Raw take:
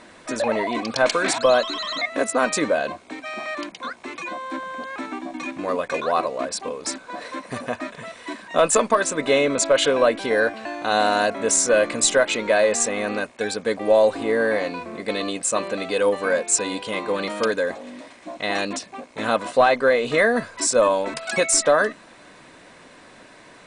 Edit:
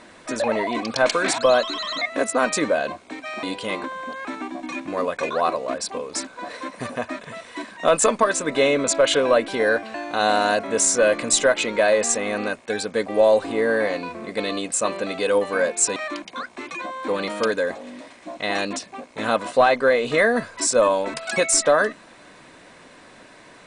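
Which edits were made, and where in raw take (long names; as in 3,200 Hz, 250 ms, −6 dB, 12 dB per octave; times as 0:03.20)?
0:03.43–0:04.55: swap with 0:16.67–0:17.08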